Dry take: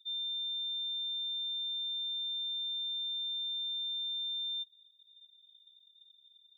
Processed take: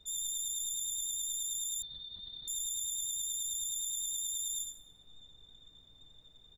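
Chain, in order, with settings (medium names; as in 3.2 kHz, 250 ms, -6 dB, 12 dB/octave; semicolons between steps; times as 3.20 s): self-modulated delay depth 0.099 ms; vibrato 9.5 Hz 24 cents; added noise brown -64 dBFS; delay 82 ms -7 dB; reverberation RT60 1.6 s, pre-delay 7 ms, DRR 5 dB; 1.82–2.48 s: LPC vocoder at 8 kHz whisper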